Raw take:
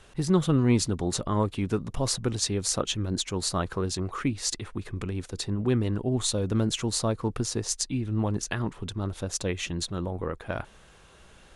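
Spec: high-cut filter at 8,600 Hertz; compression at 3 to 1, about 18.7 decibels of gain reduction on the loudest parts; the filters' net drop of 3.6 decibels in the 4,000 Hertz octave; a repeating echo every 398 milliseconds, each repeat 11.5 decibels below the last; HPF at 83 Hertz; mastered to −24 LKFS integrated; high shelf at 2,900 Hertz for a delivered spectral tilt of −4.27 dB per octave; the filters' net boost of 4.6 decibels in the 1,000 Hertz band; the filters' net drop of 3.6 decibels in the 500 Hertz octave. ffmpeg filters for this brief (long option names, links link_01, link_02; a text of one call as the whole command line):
ffmpeg -i in.wav -af "highpass=83,lowpass=8600,equalizer=frequency=500:width_type=o:gain=-6.5,equalizer=frequency=1000:width_type=o:gain=7,highshelf=frequency=2900:gain=3.5,equalizer=frequency=4000:width_type=o:gain=-7.5,acompressor=threshold=-46dB:ratio=3,aecho=1:1:398|796|1194:0.266|0.0718|0.0194,volume=20.5dB" out.wav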